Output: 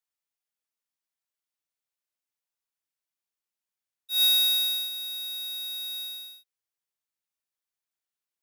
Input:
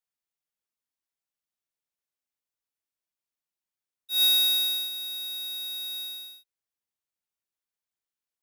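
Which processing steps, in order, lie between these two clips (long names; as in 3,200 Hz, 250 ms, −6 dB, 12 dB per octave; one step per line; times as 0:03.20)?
low-shelf EQ 410 Hz −6.5 dB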